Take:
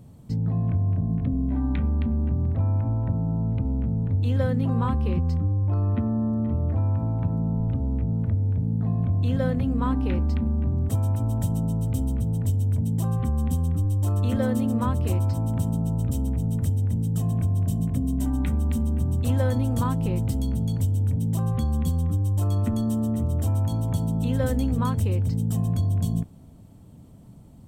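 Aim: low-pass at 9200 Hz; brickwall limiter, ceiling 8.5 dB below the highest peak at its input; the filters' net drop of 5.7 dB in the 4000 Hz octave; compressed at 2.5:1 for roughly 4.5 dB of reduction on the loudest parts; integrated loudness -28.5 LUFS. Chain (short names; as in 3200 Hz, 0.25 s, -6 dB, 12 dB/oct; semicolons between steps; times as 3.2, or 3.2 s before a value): LPF 9200 Hz; bell 4000 Hz -7.5 dB; compressor 2.5:1, threshold -26 dBFS; gain +4 dB; limiter -21.5 dBFS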